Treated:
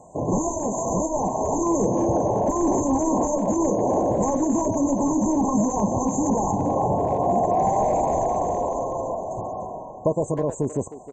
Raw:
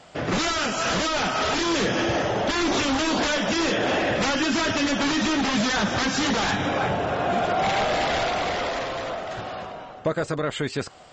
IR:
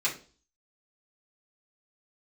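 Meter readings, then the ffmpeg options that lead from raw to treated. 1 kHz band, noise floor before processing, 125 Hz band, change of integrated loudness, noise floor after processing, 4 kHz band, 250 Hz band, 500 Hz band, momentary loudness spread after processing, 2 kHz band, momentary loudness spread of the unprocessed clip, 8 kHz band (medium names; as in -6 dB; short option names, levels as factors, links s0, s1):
+2.0 dB, -40 dBFS, +3.0 dB, +0.5 dB, -38 dBFS, under -35 dB, +3.0 dB, +3.0 dB, 6 LU, under -25 dB, 7 LU, +1.0 dB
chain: -filter_complex "[0:a]afftfilt=real='re*(1-between(b*sr/4096,1100,6100))':imag='im*(1-between(b*sr/4096,1100,6100))':win_size=4096:overlap=0.75,asplit=2[s0][s1];[s1]adelay=310,highpass=300,lowpass=3400,asoftclip=type=hard:threshold=0.0841,volume=0.251[s2];[s0][s2]amix=inputs=2:normalize=0,volume=1.41"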